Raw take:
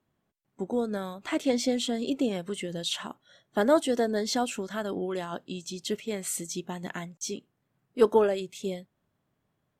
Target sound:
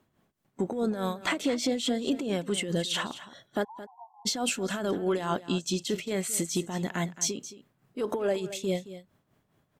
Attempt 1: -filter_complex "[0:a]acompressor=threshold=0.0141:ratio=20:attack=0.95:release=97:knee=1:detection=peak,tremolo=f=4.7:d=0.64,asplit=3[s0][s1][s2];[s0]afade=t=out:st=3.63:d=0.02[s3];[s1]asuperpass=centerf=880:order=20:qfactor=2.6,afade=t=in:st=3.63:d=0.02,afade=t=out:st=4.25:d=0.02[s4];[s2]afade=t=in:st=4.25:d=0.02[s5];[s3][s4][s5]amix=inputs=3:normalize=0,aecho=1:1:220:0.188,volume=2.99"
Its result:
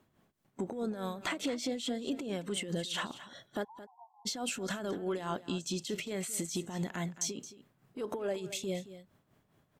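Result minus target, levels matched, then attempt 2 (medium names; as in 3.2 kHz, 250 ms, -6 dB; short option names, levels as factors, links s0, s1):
compression: peak gain reduction +7 dB
-filter_complex "[0:a]acompressor=threshold=0.0335:ratio=20:attack=0.95:release=97:knee=1:detection=peak,tremolo=f=4.7:d=0.64,asplit=3[s0][s1][s2];[s0]afade=t=out:st=3.63:d=0.02[s3];[s1]asuperpass=centerf=880:order=20:qfactor=2.6,afade=t=in:st=3.63:d=0.02,afade=t=out:st=4.25:d=0.02[s4];[s2]afade=t=in:st=4.25:d=0.02[s5];[s3][s4][s5]amix=inputs=3:normalize=0,aecho=1:1:220:0.188,volume=2.99"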